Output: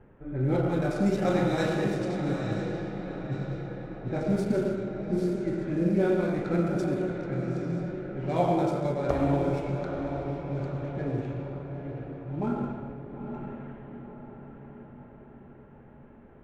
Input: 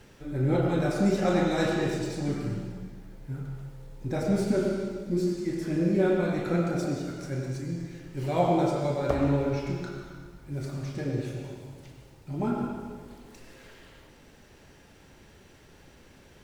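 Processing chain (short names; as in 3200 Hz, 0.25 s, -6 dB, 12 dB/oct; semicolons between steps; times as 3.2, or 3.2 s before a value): Wiener smoothing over 9 samples; diffused feedback echo 0.879 s, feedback 55%, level -7 dB; low-pass opened by the level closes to 1300 Hz, open at -22 dBFS; gain -1 dB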